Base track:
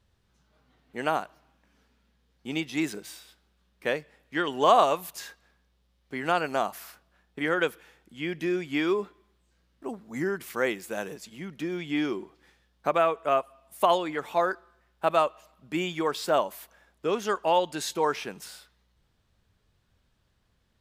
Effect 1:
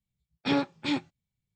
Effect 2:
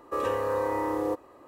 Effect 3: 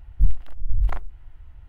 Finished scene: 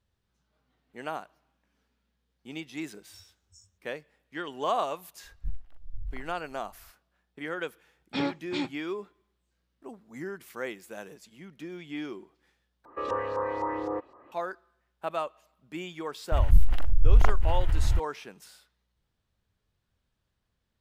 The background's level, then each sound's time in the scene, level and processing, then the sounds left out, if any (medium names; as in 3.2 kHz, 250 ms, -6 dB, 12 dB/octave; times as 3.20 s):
base track -8.5 dB
2.68 s: add 1 -4.5 dB + FFT band-reject 100–5300 Hz
5.24 s: add 3 -16 dB
7.68 s: add 1 -3.5 dB
12.85 s: replace with 2 -4.5 dB + LFO low-pass saw up 3.9 Hz 920–5900 Hz
16.32 s: add 3 -2 dB + level flattener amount 70%